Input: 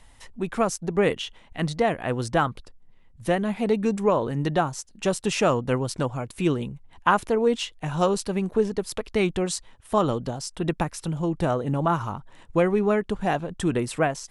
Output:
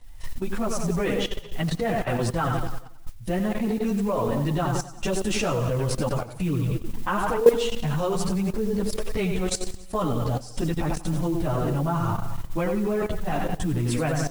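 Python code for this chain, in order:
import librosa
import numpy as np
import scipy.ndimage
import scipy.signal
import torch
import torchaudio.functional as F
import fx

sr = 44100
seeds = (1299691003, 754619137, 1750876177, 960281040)

p1 = fx.low_shelf(x, sr, hz=130.0, db=12.0)
p2 = p1 + fx.echo_feedback(p1, sr, ms=91, feedback_pct=56, wet_db=-8, dry=0)
p3 = fx.chorus_voices(p2, sr, voices=6, hz=0.28, base_ms=14, depth_ms=4.7, mix_pct=65)
p4 = fx.level_steps(p3, sr, step_db=15)
p5 = fx.mod_noise(p4, sr, seeds[0], snr_db=26)
y = F.gain(torch.from_numpy(p5), 6.0).numpy()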